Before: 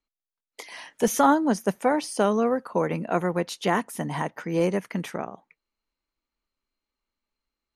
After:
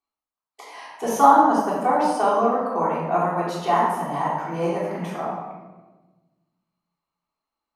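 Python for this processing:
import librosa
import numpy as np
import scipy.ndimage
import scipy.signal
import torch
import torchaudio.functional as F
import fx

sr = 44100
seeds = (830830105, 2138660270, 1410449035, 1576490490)

y = fx.highpass(x, sr, hz=120.0, slope=6)
y = fx.band_shelf(y, sr, hz=910.0, db=10.0, octaves=1.2)
y = fx.hum_notches(y, sr, base_hz=50, count=4)
y = fx.room_shoebox(y, sr, seeds[0], volume_m3=770.0, walls='mixed', distance_m=3.5)
y = F.gain(torch.from_numpy(y), -9.5).numpy()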